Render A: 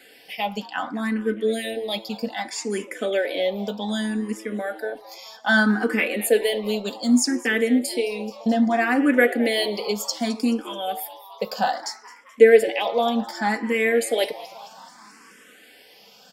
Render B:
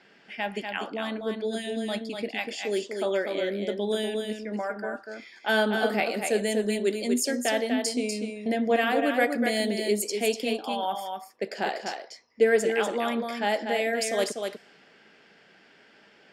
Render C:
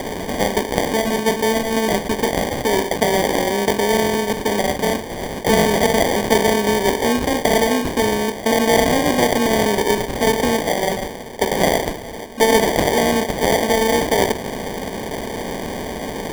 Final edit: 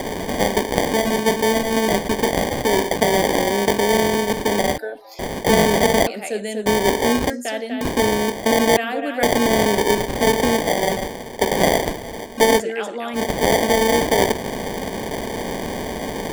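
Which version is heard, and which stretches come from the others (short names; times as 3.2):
C
4.78–5.19 from A
6.07–6.66 from B
7.3–7.81 from B
8.77–9.23 from B
12.58–13.18 from B, crossfade 0.10 s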